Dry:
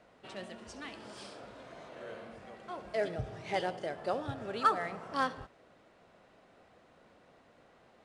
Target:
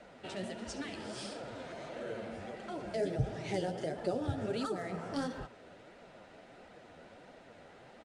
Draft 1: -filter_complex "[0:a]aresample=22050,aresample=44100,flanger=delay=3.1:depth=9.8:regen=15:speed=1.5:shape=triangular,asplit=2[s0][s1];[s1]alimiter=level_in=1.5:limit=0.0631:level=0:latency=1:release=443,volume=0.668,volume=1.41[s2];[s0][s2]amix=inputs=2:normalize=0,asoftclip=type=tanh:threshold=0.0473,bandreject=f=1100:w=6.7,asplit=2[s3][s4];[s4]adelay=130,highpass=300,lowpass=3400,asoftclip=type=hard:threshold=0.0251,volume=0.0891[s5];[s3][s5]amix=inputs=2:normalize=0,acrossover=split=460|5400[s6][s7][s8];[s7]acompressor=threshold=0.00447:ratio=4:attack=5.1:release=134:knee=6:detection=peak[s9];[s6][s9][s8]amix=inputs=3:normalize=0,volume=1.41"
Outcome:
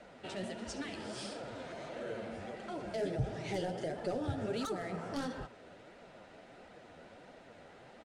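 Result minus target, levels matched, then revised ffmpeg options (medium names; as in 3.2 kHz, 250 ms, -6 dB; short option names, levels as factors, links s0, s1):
saturation: distortion +14 dB
-filter_complex "[0:a]aresample=22050,aresample=44100,flanger=delay=3.1:depth=9.8:regen=15:speed=1.5:shape=triangular,asplit=2[s0][s1];[s1]alimiter=level_in=1.5:limit=0.0631:level=0:latency=1:release=443,volume=0.668,volume=1.41[s2];[s0][s2]amix=inputs=2:normalize=0,asoftclip=type=tanh:threshold=0.178,bandreject=f=1100:w=6.7,asplit=2[s3][s4];[s4]adelay=130,highpass=300,lowpass=3400,asoftclip=type=hard:threshold=0.0251,volume=0.0891[s5];[s3][s5]amix=inputs=2:normalize=0,acrossover=split=460|5400[s6][s7][s8];[s7]acompressor=threshold=0.00447:ratio=4:attack=5.1:release=134:knee=6:detection=peak[s9];[s6][s9][s8]amix=inputs=3:normalize=0,volume=1.41"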